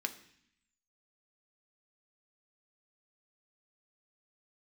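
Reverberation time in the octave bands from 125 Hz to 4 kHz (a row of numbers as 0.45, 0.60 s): 0.95, 0.95, 0.60, 0.65, 0.90, 0.85 s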